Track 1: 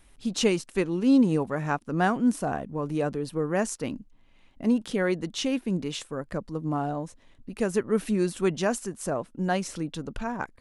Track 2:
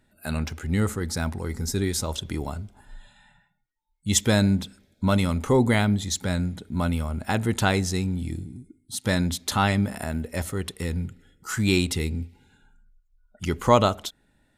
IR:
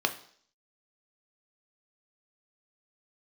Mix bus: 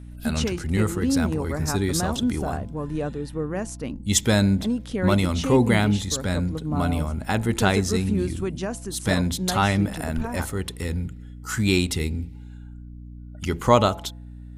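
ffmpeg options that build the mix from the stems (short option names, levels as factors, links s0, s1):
-filter_complex "[0:a]lowshelf=f=210:g=6,alimiter=limit=0.178:level=0:latency=1:release=191,volume=0.794[s0];[1:a]aeval=exprs='val(0)+0.0112*(sin(2*PI*60*n/s)+sin(2*PI*2*60*n/s)/2+sin(2*PI*3*60*n/s)/3+sin(2*PI*4*60*n/s)/4+sin(2*PI*5*60*n/s)/5)':c=same,volume=1.12[s1];[s0][s1]amix=inputs=2:normalize=0,bandreject=f=169.6:t=h:w=4,bandreject=f=339.2:t=h:w=4,bandreject=f=508.8:t=h:w=4,bandreject=f=678.4:t=h:w=4,bandreject=f=848:t=h:w=4,bandreject=f=1017.6:t=h:w=4"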